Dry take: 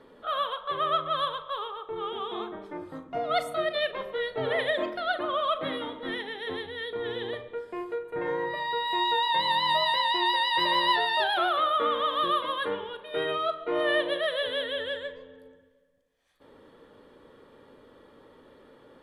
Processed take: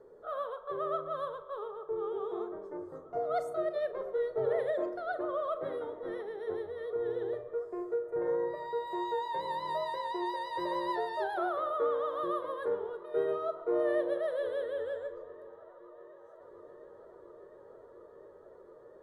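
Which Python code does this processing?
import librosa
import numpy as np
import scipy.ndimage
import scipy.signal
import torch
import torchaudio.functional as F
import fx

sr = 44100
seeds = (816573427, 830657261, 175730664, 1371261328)

p1 = fx.curve_eq(x, sr, hz=(110.0, 180.0, 260.0, 390.0, 1000.0, 1500.0, 2900.0, 6500.0, 9700.0), db=(0, -3, -11, 9, -4, -4, -23, 0, -7))
p2 = p1 + fx.echo_wet_lowpass(p1, sr, ms=709, feedback_pct=83, hz=1900.0, wet_db=-23, dry=0)
y = F.gain(torch.from_numpy(p2), -6.0).numpy()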